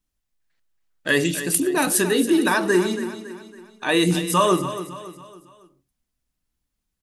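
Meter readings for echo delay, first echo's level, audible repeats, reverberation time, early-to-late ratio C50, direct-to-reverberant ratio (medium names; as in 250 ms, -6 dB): 278 ms, -12.0 dB, 4, no reverb, no reverb, no reverb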